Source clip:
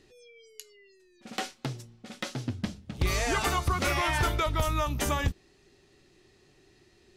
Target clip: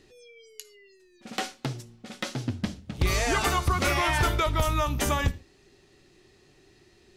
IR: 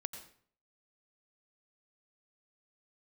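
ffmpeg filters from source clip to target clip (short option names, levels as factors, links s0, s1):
-filter_complex "[0:a]asplit=2[s0][s1];[1:a]atrim=start_sample=2205,afade=t=out:st=0.29:d=0.01,atrim=end_sample=13230,asetrate=70560,aresample=44100[s2];[s1][s2]afir=irnorm=-1:irlink=0,volume=0.708[s3];[s0][s3]amix=inputs=2:normalize=0"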